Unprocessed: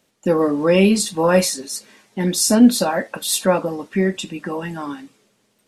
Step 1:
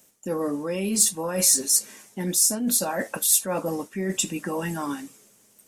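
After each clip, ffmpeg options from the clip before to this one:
-af "areverse,acompressor=threshold=-24dB:ratio=12,areverse,aexciter=amount=2.6:drive=8.6:freq=5.8k"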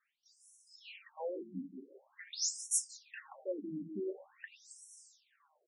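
-filter_complex "[0:a]asplit=2[a][b];[b]adelay=179,lowpass=f=2.1k:p=1,volume=-7dB,asplit=2[c][d];[d]adelay=179,lowpass=f=2.1k:p=1,volume=0.38,asplit=2[e][f];[f]adelay=179,lowpass=f=2.1k:p=1,volume=0.38,asplit=2[g][h];[h]adelay=179,lowpass=f=2.1k:p=1,volume=0.38[i];[a][c][e][g][i]amix=inputs=5:normalize=0,afftfilt=real='re*between(b*sr/1024,230*pow(7800/230,0.5+0.5*sin(2*PI*0.46*pts/sr))/1.41,230*pow(7800/230,0.5+0.5*sin(2*PI*0.46*pts/sr))*1.41)':imag='im*between(b*sr/1024,230*pow(7800/230,0.5+0.5*sin(2*PI*0.46*pts/sr))/1.41,230*pow(7800/230,0.5+0.5*sin(2*PI*0.46*pts/sr))*1.41)':win_size=1024:overlap=0.75,volume=-7.5dB"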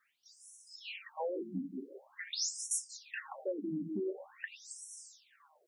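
-af "acompressor=threshold=-41dB:ratio=4,highpass=47,volume=7dB"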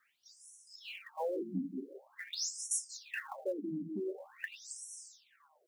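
-filter_complex "[0:a]acrossover=split=720|5200[a][b][c];[b]acrusher=bits=5:mode=log:mix=0:aa=0.000001[d];[a][d][c]amix=inputs=3:normalize=0,tremolo=f=0.64:d=0.37,volume=2dB"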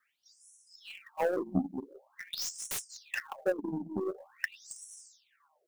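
-filter_complex "[0:a]aeval=exprs='0.0944*(cos(1*acos(clip(val(0)/0.0944,-1,1)))-cos(1*PI/2))+0.0133*(cos(5*acos(clip(val(0)/0.0944,-1,1)))-cos(5*PI/2))+0.00075*(cos(6*acos(clip(val(0)/0.0944,-1,1)))-cos(6*PI/2))+0.0188*(cos(7*acos(clip(val(0)/0.0944,-1,1)))-cos(7*PI/2))':c=same,acrossover=split=650|3000[a][b][c];[c]aeval=exprs='0.0141*(abs(mod(val(0)/0.0141+3,4)-2)-1)':c=same[d];[a][b][d]amix=inputs=3:normalize=0,volume=7.5dB"

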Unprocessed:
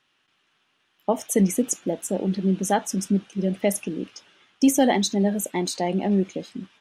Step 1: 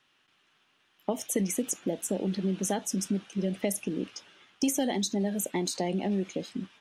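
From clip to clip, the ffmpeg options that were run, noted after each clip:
-filter_complex "[0:a]acrossover=split=560|2100|4200[a][b][c][d];[a]acompressor=threshold=-28dB:ratio=4[e];[b]acompressor=threshold=-39dB:ratio=4[f];[c]acompressor=threshold=-44dB:ratio=4[g];[d]acompressor=threshold=-31dB:ratio=4[h];[e][f][g][h]amix=inputs=4:normalize=0"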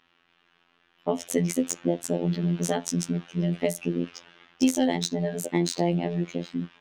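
-af "afftfilt=real='hypot(re,im)*cos(PI*b)':imag='0':win_size=2048:overlap=0.75,adynamicsmooth=sensitivity=3:basefreq=4k,volume=8dB"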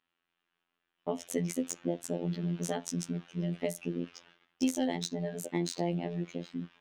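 -af "agate=range=-11dB:threshold=-52dB:ratio=16:detection=peak,volume=-7.5dB"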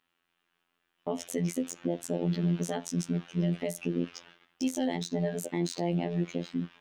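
-af "alimiter=limit=-23dB:level=0:latency=1:release=110,volume=5.5dB"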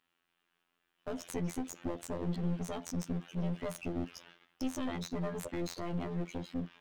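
-af "aeval=exprs='clip(val(0),-1,0.015)':c=same,volume=-2dB"

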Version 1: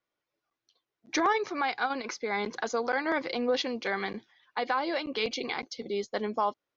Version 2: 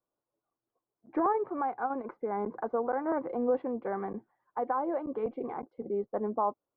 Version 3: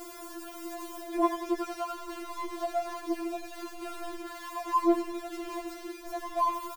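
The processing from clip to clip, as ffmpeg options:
-af "lowpass=f=1.1k:w=0.5412,lowpass=f=1.1k:w=1.3066"
-af "aeval=exprs='val(0)+0.5*0.0211*sgn(val(0))':c=same,aecho=1:1:90|180|270|360|450|540:0.316|0.171|0.0922|0.0498|0.0269|0.0145,afftfilt=real='re*4*eq(mod(b,16),0)':imag='im*4*eq(mod(b,16),0)':win_size=2048:overlap=0.75"

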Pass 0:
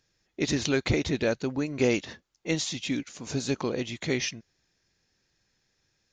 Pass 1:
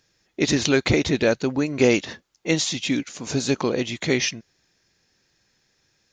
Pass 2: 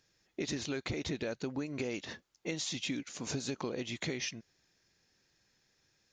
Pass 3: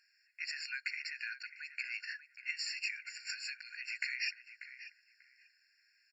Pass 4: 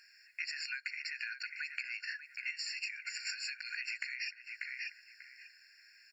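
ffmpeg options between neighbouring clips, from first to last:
-af "lowshelf=f=78:g=-8,volume=7dB"
-af "alimiter=limit=-12dB:level=0:latency=1:release=117,acompressor=threshold=-27dB:ratio=6,volume=-6.5dB"
-filter_complex "[0:a]highshelf=f=7.4k:g=-10,asplit=2[a][b];[b]adelay=590,lowpass=f=1.3k:p=1,volume=-7dB,asplit=2[c][d];[d]adelay=590,lowpass=f=1.3k:p=1,volume=0.32,asplit=2[e][f];[f]adelay=590,lowpass=f=1.3k:p=1,volume=0.32,asplit=2[g][h];[h]adelay=590,lowpass=f=1.3k:p=1,volume=0.32[i];[c][e][g][i]amix=inputs=4:normalize=0[j];[a][j]amix=inputs=2:normalize=0,afftfilt=real='re*eq(mod(floor(b*sr/1024/1400),2),1)':imag='im*eq(mod(floor(b*sr/1024/1400),2),1)':win_size=1024:overlap=0.75,volume=6dB"
-af "acompressor=threshold=-47dB:ratio=12,volume=10.5dB"

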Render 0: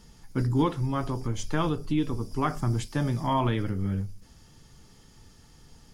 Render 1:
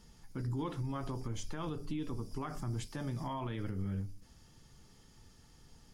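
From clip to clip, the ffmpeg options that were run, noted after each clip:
-af "bandreject=f=146.2:t=h:w=4,bandreject=f=292.4:t=h:w=4,bandreject=f=438.6:t=h:w=4,alimiter=limit=-24dB:level=0:latency=1:release=73,volume=-6dB"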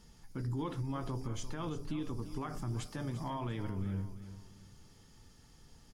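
-af "aecho=1:1:345|690|1035:0.224|0.0784|0.0274"

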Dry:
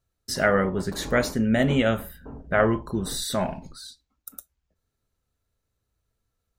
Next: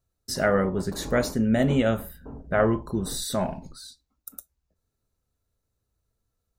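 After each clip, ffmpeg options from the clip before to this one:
-af "equalizer=f=2.2k:t=o:w=1.6:g=-5.5,bandreject=f=3.2k:w=22"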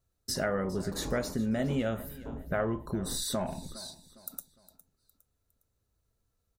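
-af "acompressor=threshold=-31dB:ratio=2.5,aecho=1:1:409|818|1227:0.126|0.0491|0.0191"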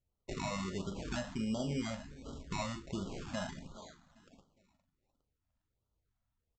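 -filter_complex "[0:a]aresample=16000,acrusher=samples=8:mix=1:aa=0.000001:lfo=1:lforange=4.8:lforate=0.46,aresample=44100,asplit=2[a][b];[b]adelay=41,volume=-11dB[c];[a][c]amix=inputs=2:normalize=0,afftfilt=real='re*(1-between(b*sr/1024,360*pow(2100/360,0.5+0.5*sin(2*PI*1.4*pts/sr))/1.41,360*pow(2100/360,0.5+0.5*sin(2*PI*1.4*pts/sr))*1.41))':imag='im*(1-between(b*sr/1024,360*pow(2100/360,0.5+0.5*sin(2*PI*1.4*pts/sr))/1.41,360*pow(2100/360,0.5+0.5*sin(2*PI*1.4*pts/sr))*1.41))':win_size=1024:overlap=0.75,volume=-6.5dB"

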